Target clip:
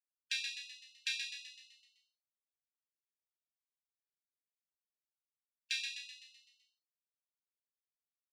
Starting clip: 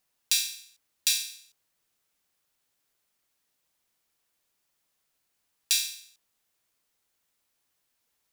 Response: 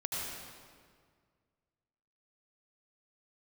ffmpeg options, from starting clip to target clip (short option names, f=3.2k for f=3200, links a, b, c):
-filter_complex "[0:a]afftfilt=real='re*gte(hypot(re,im),0.0224)':imag='im*gte(hypot(re,im),0.0224)':win_size=1024:overlap=0.75,lowpass=1.7k,asplit=8[a][b][c][d][e][f][g][h];[b]adelay=127,afreqshift=54,volume=-5.5dB[i];[c]adelay=254,afreqshift=108,volume=-11.2dB[j];[d]adelay=381,afreqshift=162,volume=-16.9dB[k];[e]adelay=508,afreqshift=216,volume=-22.5dB[l];[f]adelay=635,afreqshift=270,volume=-28.2dB[m];[g]adelay=762,afreqshift=324,volume=-33.9dB[n];[h]adelay=889,afreqshift=378,volume=-39.6dB[o];[a][i][j][k][l][m][n][o]amix=inputs=8:normalize=0,volume=4dB"